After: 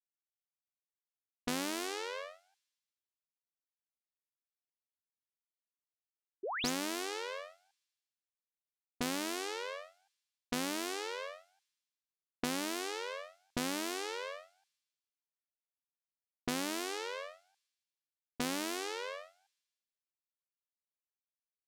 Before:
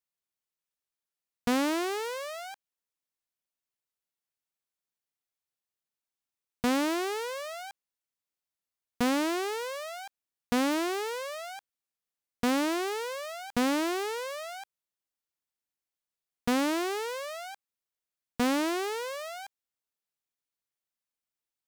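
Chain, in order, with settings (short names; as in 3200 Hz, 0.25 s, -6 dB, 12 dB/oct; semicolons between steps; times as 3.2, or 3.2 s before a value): low shelf 68 Hz +10 dB; low-pass opened by the level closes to 630 Hz, open at -25.5 dBFS; high shelf 2400 Hz +11.5 dB; gate -35 dBFS, range -32 dB; compressor 2:1, threshold -39 dBFS, peak gain reduction 10.5 dB; AM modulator 94 Hz, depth 55%; painted sound rise, 6.43–6.7, 340–7600 Hz -39 dBFS; thin delay 79 ms, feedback 68%, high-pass 5500 Hz, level -19 dB; gain +1.5 dB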